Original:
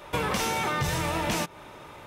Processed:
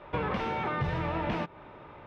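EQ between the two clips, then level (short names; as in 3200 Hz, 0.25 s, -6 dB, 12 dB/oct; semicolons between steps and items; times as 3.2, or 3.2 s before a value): air absorption 350 m; high shelf 5700 Hz -9 dB; -1.5 dB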